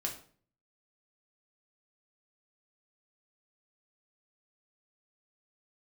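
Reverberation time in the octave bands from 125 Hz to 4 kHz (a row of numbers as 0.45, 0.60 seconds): 0.75, 0.60, 0.50, 0.45, 0.40, 0.35 seconds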